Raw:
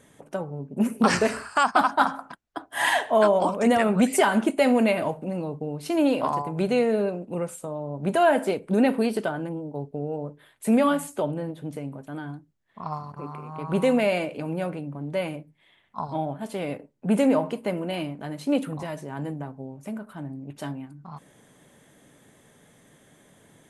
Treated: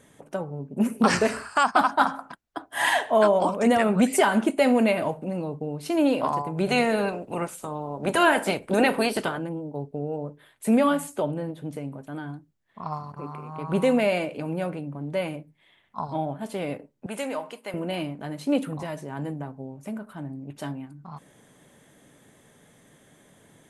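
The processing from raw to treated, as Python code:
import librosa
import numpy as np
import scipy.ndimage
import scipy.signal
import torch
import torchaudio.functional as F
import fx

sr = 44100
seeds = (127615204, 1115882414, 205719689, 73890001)

y = fx.spec_clip(x, sr, under_db=15, at=(6.66, 9.37), fade=0.02)
y = fx.highpass(y, sr, hz=1400.0, slope=6, at=(17.06, 17.74))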